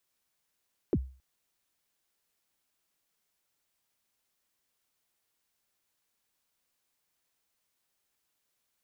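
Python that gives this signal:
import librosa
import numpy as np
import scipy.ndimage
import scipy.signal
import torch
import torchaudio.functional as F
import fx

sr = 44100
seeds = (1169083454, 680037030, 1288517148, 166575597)

y = fx.drum_kick(sr, seeds[0], length_s=0.27, level_db=-20.0, start_hz=460.0, end_hz=65.0, sweep_ms=50.0, decay_s=0.38, click=False)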